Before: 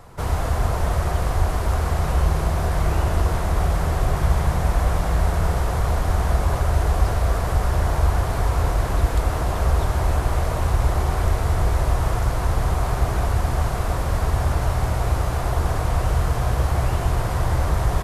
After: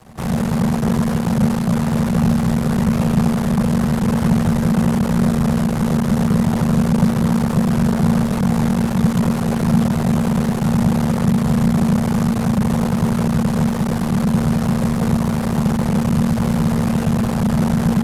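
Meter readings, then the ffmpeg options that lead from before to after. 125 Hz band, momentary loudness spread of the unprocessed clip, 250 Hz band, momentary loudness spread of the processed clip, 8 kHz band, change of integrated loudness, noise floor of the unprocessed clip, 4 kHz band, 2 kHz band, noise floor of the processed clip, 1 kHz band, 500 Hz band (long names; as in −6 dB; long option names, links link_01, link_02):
+3.5 dB, 2 LU, +18.0 dB, 2 LU, +3.0 dB, +5.0 dB, −25 dBFS, +3.0 dB, +1.0 dB, −20 dBFS, 0.0 dB, +2.5 dB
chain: -af "aeval=exprs='max(val(0),0)':channel_layout=same,afreqshift=-230,volume=6dB"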